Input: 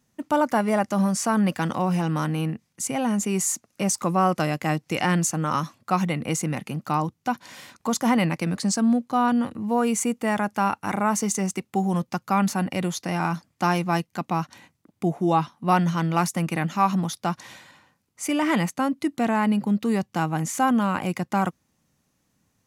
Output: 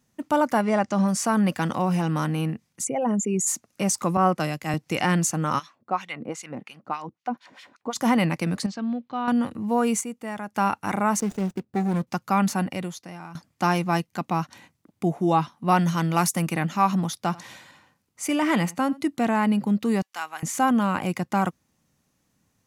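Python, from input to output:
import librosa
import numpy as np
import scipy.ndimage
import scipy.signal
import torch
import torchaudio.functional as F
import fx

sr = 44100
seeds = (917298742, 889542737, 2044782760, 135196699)

y = fx.lowpass(x, sr, hz=7700.0, slope=24, at=(0.61, 1.07), fade=0.02)
y = fx.envelope_sharpen(y, sr, power=2.0, at=(2.83, 3.46), fade=0.02)
y = fx.band_widen(y, sr, depth_pct=100, at=(4.17, 4.74))
y = fx.filter_lfo_bandpass(y, sr, shape='sine', hz=fx.line((5.58, 2.0), (7.95, 6.6)), low_hz=290.0, high_hz=3700.0, q=1.2, at=(5.58, 7.95), fade=0.02)
y = fx.ladder_lowpass(y, sr, hz=4300.0, resonance_pct=35, at=(8.66, 9.28))
y = fx.median_filter(y, sr, points=41, at=(11.2, 12.07))
y = fx.high_shelf(y, sr, hz=6100.0, db=8.5, at=(15.78, 16.52))
y = fx.echo_single(y, sr, ms=87, db=-22.0, at=(17.29, 19.06), fade=0.02)
y = fx.highpass(y, sr, hz=1200.0, slope=12, at=(20.02, 20.43))
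y = fx.edit(y, sr, fx.clip_gain(start_s=10.01, length_s=0.54, db=-9.0),
    fx.fade_out_to(start_s=12.6, length_s=0.75, curve='qua', floor_db=-16.5), tone=tone)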